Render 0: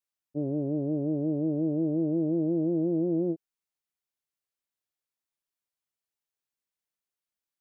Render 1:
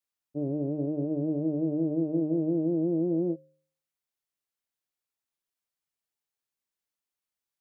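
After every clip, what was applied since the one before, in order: de-hum 76.23 Hz, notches 8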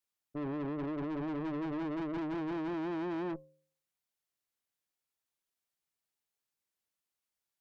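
valve stage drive 37 dB, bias 0.55; trim +2.5 dB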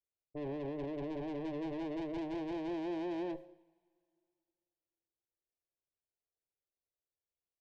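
static phaser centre 530 Hz, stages 4; level-controlled noise filter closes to 520 Hz, open at -39 dBFS; two-slope reverb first 0.78 s, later 2.5 s, from -18 dB, DRR 14 dB; trim +2 dB

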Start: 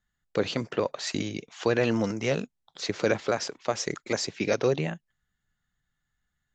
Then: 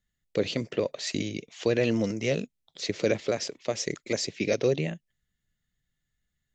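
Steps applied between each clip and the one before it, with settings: high-order bell 1.1 kHz -9.5 dB 1.3 oct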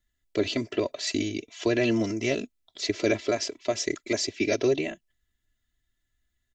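comb 3 ms, depth 86%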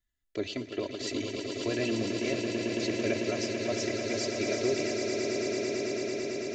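echo with a slow build-up 111 ms, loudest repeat 8, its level -8 dB; trim -7.5 dB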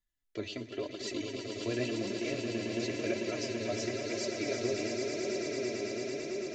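flange 0.94 Hz, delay 4.9 ms, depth 5 ms, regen +37%

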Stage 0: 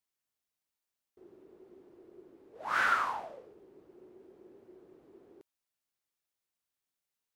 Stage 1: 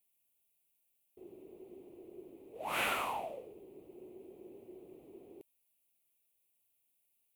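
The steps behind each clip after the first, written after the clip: FFT filter 730 Hz 0 dB, 1.6 kHz -18 dB, 2.5 kHz +5 dB, 5.2 kHz -10 dB, 11 kHz +10 dB; trim +3.5 dB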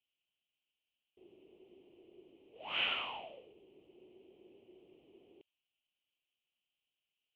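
four-pole ladder low-pass 3.2 kHz, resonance 80%; trim +4 dB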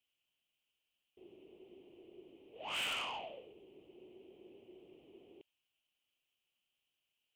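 saturation -37.5 dBFS, distortion -8 dB; trim +3 dB

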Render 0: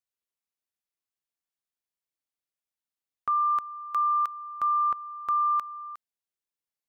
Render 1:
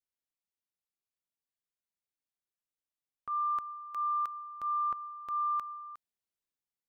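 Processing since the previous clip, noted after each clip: bass shelf 390 Hz +5.5 dB; transient shaper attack -6 dB, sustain +4 dB; trim -7 dB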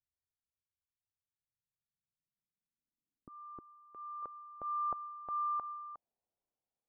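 tremolo saw down 0.71 Hz, depth 30%; low-pass sweep 100 Hz -> 720 Hz, 1.27–4.97 s; trim +4.5 dB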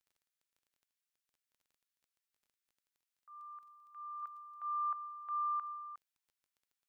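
inverse Chebyshev high-pass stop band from 290 Hz, stop band 70 dB; crackle 16 per s -64 dBFS; trim +4.5 dB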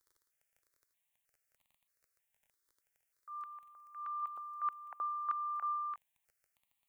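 stepped phaser 3.2 Hz 720–1500 Hz; trim +9 dB

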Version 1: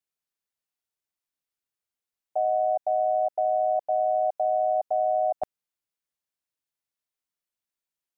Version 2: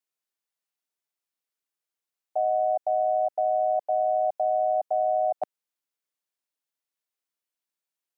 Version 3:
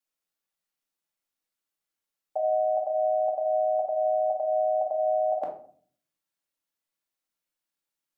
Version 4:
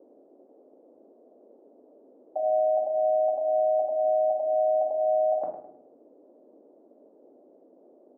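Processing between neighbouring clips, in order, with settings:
high-pass 240 Hz
simulated room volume 530 m³, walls furnished, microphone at 2.3 m; trim -1.5 dB
low-pass 1 kHz 12 dB/octave; feedback delay 104 ms, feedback 33%, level -10.5 dB; band noise 250–630 Hz -56 dBFS

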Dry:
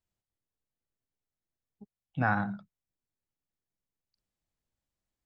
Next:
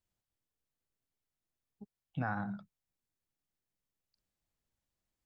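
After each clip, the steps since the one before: dynamic bell 2.8 kHz, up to -7 dB, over -47 dBFS, Q 1.3; compression 3:1, threshold -34 dBFS, peak gain reduction 8.5 dB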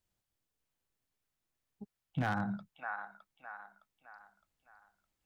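feedback echo behind a band-pass 612 ms, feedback 41%, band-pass 1.6 kHz, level -3 dB; wavefolder -28 dBFS; trim +3 dB

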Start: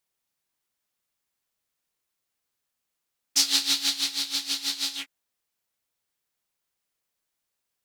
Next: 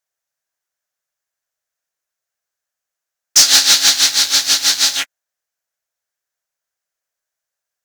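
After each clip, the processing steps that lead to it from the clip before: fifteen-band graphic EQ 250 Hz -8 dB, 630 Hz +10 dB, 1.6 kHz +11 dB, 6.3 kHz +9 dB, 16 kHz +4 dB; waveshaping leveller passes 3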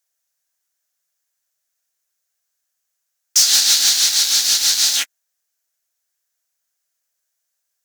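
peak limiter -13.5 dBFS, peak gain reduction 11.5 dB; treble shelf 3.3 kHz +11.5 dB; trim -2 dB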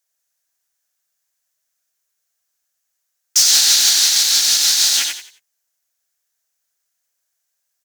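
frequency-shifting echo 89 ms, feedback 31%, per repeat +36 Hz, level -4 dB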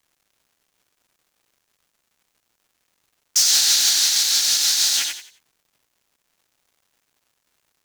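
crackle 380 per s -49 dBFS; trim -4 dB

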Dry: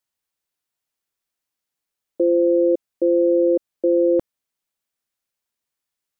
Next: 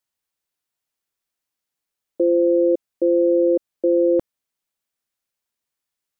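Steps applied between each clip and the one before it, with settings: no audible change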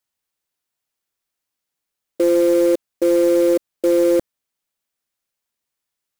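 short-mantissa float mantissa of 2-bit; trim +2 dB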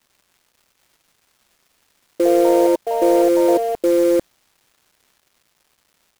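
crackle 570 per s -48 dBFS; ever faster or slower copies 607 ms, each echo +5 st, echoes 2, each echo -6 dB

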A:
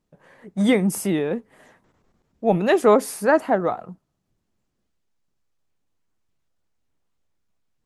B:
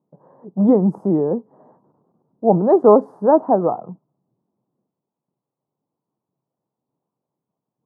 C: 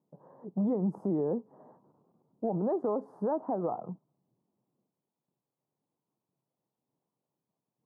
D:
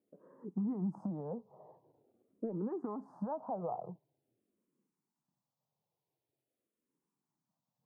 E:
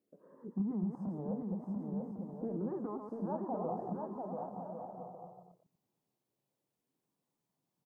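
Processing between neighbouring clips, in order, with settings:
elliptic band-pass 130–990 Hz, stop band 40 dB; trim +5 dB
compression 3:1, threshold -21 dBFS, peak gain reduction 11.5 dB; peak limiter -17 dBFS, peak gain reduction 6 dB; trim -5.5 dB
compression 4:1, threshold -32 dBFS, peak gain reduction 6 dB; barber-pole phaser -0.46 Hz
chunks repeated in reverse 119 ms, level -5 dB; on a send: bouncing-ball echo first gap 690 ms, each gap 0.6×, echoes 5; on the sum: trim -1 dB

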